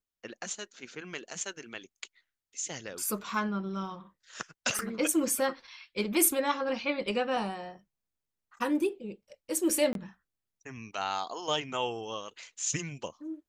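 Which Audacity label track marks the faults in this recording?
4.790000	4.790000	click
9.930000	9.950000	drop-out 22 ms

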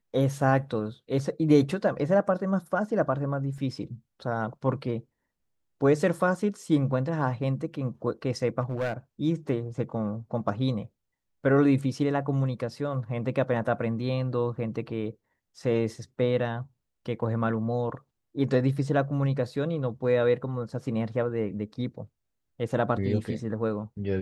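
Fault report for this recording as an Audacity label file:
3.580000	3.580000	drop-out 2.2 ms
8.610000	8.930000	clipping −24 dBFS

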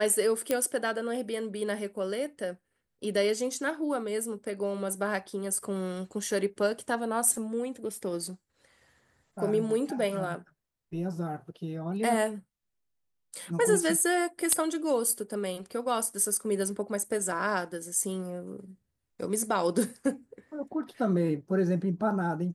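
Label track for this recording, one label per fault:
0.510000	0.510000	click −12 dBFS

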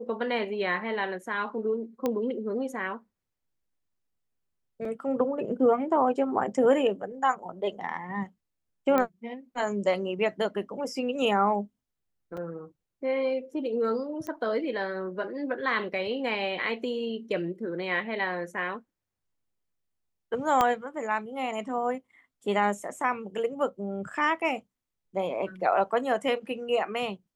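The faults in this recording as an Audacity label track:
2.060000	2.060000	click −15 dBFS
4.850000	4.850000	drop-out 3.1 ms
8.980000	8.980000	click −13 dBFS
12.370000	12.370000	drop-out 4.6 ms
14.270000	14.270000	click −23 dBFS
20.610000	20.610000	click −10 dBFS

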